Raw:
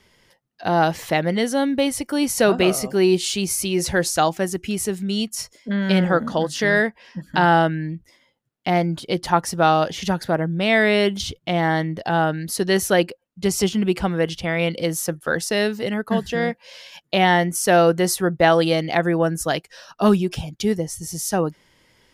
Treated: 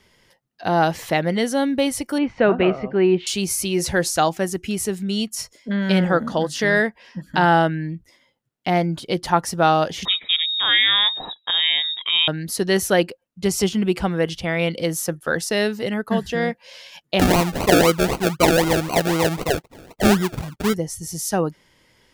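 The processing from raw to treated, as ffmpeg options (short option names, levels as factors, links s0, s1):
-filter_complex "[0:a]asettb=1/sr,asplit=3[s0][s1][s2];[s0]atrim=end=2.184[s3];[s1]atrim=start=2.18:end=3.27,asetpts=PTS-STARTPTS,afade=t=in:d=0.004:c=qsin,afade=t=out:st=1.086:d=0.004:c=qsin,lowpass=f=2600:w=0.5412,lowpass=f=2600:w=1.3066[s4];[s2]atrim=start=3.266[s5];[s3][s4]acrossfade=d=0.004:c1=hsin:c2=qsin[s6];[s6][s5]acrossfade=d=0.004:c1=qsin:c2=hsin,asettb=1/sr,asplit=3[s7][s8][s9];[s7]atrim=end=10.054[s10];[s8]atrim=start=10.05:end=12.28,asetpts=PTS-STARTPTS,afade=t=in:d=0.004:c=qsin,afade=t=out:st=2.226:d=0.004:c=qsin,lowpass=f=3300:t=q:w=0.5098,lowpass=f=3300:t=q:w=0.6013,lowpass=f=3300:t=q:w=0.9,lowpass=f=3300:t=q:w=2.563,afreqshift=-3900[s11];[s9]atrim=start=12.276[s12];[s10][s11]acrossfade=d=0.004:c1=hsin:c2=qsin[s13];[s13][s12]acrossfade=d=0.004:c1=qsin:c2=hsin,asettb=1/sr,asplit=3[s14][s15][s16];[s14]atrim=end=17.194[s17];[s15]atrim=start=17.19:end=20.74,asetpts=PTS-STARTPTS,afade=t=in:d=0.004:c=qsin,afade=t=out:st=3.546:d=0.004:c=qsin,acrusher=samples=35:mix=1:aa=0.000001:lfo=1:lforange=21:lforate=3.9[s18];[s16]atrim=start=20.736[s19];[s17][s18]acrossfade=d=0.004:c1=hsin:c2=qsin[s20];[s20][s19]acrossfade=d=0.004:c1=qsin:c2=hsin"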